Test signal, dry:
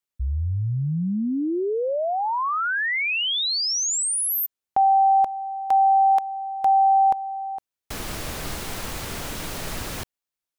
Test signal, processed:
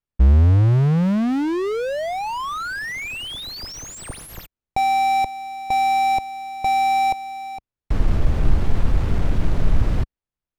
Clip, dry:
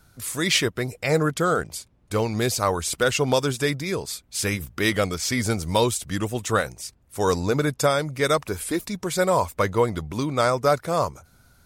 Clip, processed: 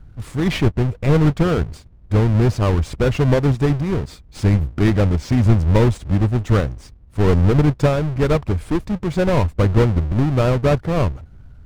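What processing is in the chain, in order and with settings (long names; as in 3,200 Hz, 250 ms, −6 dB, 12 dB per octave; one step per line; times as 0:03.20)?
each half-wave held at its own peak
RIAA equalisation playback
highs frequency-modulated by the lows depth 0.14 ms
level −4.5 dB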